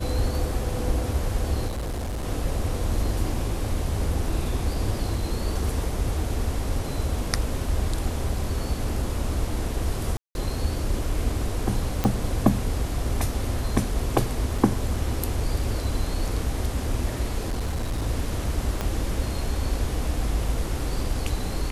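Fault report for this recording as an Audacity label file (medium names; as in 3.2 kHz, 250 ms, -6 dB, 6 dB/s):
1.670000	2.250000	clipped -26 dBFS
10.170000	10.350000	dropout 181 ms
12.040000	12.040000	pop -10 dBFS
14.580000	14.580000	dropout 4.2 ms
17.490000	18.070000	clipped -23 dBFS
18.810000	18.810000	pop -12 dBFS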